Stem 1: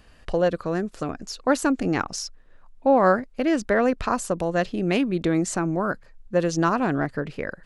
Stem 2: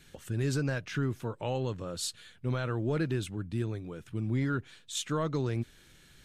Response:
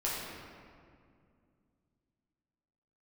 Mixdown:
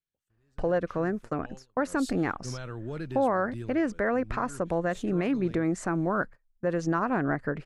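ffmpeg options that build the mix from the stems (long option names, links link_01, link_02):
-filter_complex "[0:a]highshelf=frequency=2500:width_type=q:width=1.5:gain=-8,adelay=300,volume=-2.5dB[link_01];[1:a]volume=-6dB,afade=type=in:start_time=1.74:duration=0.36:silence=0.237137,afade=type=out:start_time=3.63:duration=0.2:silence=0.446684[link_02];[link_01][link_02]amix=inputs=2:normalize=0,agate=range=-22dB:threshold=-40dB:ratio=16:detection=peak,alimiter=limit=-17.5dB:level=0:latency=1:release=114"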